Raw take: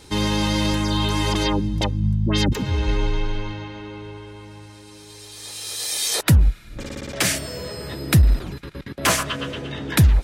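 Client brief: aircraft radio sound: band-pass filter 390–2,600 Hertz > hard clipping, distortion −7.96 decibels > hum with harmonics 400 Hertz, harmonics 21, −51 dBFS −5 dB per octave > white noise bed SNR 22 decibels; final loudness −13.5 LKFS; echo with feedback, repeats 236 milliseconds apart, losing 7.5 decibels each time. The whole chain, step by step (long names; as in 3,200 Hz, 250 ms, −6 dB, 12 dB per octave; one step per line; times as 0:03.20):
band-pass filter 390–2,600 Hz
repeating echo 236 ms, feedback 42%, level −7.5 dB
hard clipping −26.5 dBFS
hum with harmonics 400 Hz, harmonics 21, −51 dBFS −5 dB per octave
white noise bed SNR 22 dB
level +18.5 dB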